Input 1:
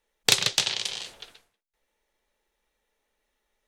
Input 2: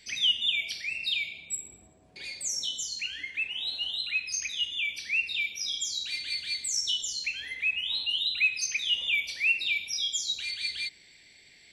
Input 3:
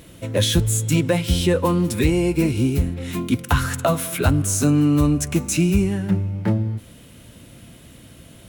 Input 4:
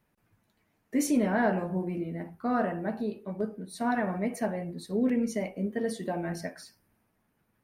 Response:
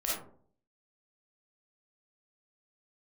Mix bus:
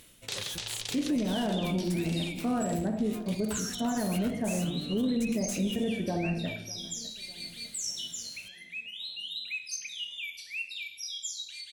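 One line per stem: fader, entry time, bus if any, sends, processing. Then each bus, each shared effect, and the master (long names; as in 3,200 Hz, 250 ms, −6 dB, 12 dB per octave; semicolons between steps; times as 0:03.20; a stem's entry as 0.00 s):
−7.0 dB, 0.00 s, no send, echo send −10 dB, no processing
−4.5 dB, 1.10 s, send −13.5 dB, no echo send, first-order pre-emphasis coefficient 0.8
−6.5 dB, 0.00 s, no send, no echo send, tilt shelving filter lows −8 dB, about 1,300 Hz; tube saturation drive 20 dB, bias 0.65; automatic ducking −8 dB, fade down 0.25 s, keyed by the fourth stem
−4.5 dB, 0.00 s, send −13 dB, echo send −19 dB, spectral tilt −3.5 dB per octave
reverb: on, RT60 0.50 s, pre-delay 10 ms
echo: repeating echo 602 ms, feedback 51%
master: brickwall limiter −21.5 dBFS, peak gain reduction 12.5 dB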